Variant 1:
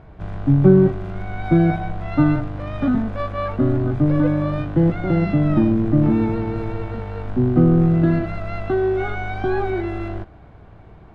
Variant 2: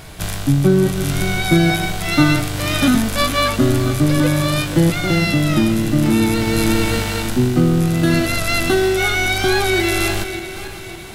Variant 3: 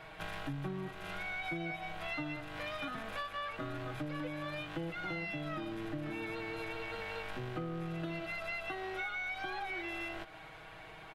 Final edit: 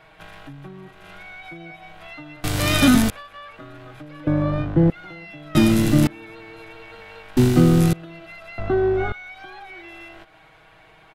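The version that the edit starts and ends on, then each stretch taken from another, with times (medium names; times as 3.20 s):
3
2.44–3.10 s: from 2
4.27–4.90 s: from 1
5.55–6.07 s: from 2
7.37–7.93 s: from 2
8.58–9.12 s: from 1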